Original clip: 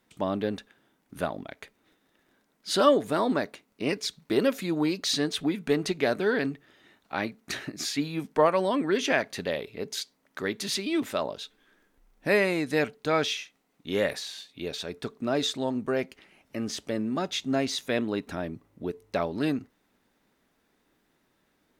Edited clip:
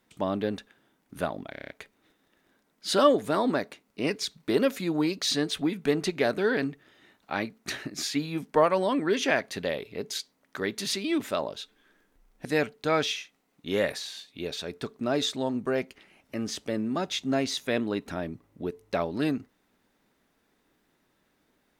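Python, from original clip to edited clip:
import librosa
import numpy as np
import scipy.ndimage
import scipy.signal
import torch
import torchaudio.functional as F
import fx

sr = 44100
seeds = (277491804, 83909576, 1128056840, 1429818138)

y = fx.edit(x, sr, fx.stutter(start_s=1.51, slice_s=0.03, count=7),
    fx.cut(start_s=12.27, length_s=0.39), tone=tone)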